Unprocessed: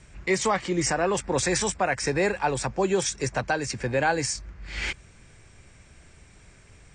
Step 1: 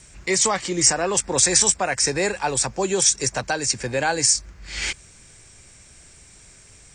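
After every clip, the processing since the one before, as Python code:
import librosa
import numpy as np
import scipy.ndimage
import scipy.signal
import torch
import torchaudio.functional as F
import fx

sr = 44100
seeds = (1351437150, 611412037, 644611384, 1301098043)

y = fx.bass_treble(x, sr, bass_db=-2, treble_db=13)
y = y * librosa.db_to_amplitude(1.0)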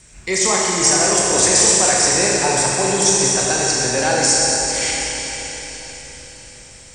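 y = fx.echo_diffused(x, sr, ms=532, feedback_pct=44, wet_db=-12.5)
y = fx.rev_schroeder(y, sr, rt60_s=3.6, comb_ms=26, drr_db=-4.0)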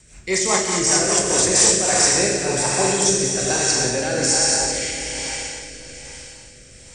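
y = fx.rotary_switch(x, sr, hz=5.0, then_hz=1.2, switch_at_s=1.16)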